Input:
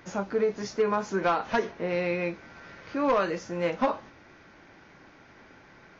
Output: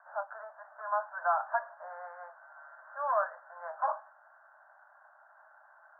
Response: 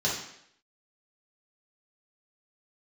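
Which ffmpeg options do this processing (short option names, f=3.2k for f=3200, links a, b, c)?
-af "asuperpass=centerf=1000:order=20:qfactor=0.93,volume=-2dB"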